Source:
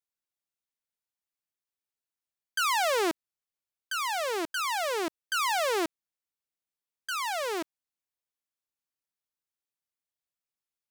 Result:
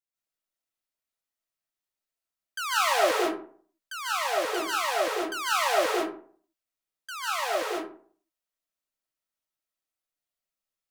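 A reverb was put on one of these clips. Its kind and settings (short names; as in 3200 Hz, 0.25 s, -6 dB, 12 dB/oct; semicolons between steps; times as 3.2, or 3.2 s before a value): digital reverb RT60 0.51 s, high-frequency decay 0.5×, pre-delay 0.11 s, DRR -7.5 dB; gain -5.5 dB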